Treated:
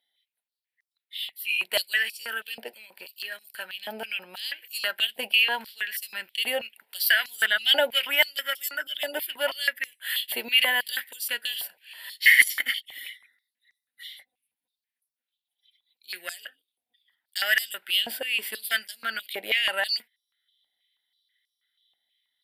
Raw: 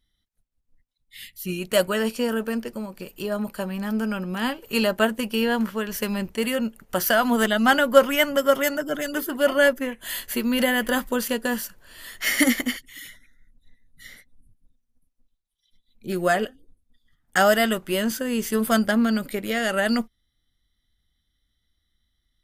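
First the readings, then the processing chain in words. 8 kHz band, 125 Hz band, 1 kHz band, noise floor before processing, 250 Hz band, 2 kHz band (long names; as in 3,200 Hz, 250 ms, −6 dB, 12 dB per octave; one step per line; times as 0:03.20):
−4.0 dB, below −25 dB, −10.5 dB, −75 dBFS, −26.5 dB, +1.5 dB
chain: harmonic generator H 4 −32 dB, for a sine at −3 dBFS
phaser with its sweep stopped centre 2,800 Hz, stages 4
high-pass on a step sequencer 6.2 Hz 760–5,900 Hz
level +1.5 dB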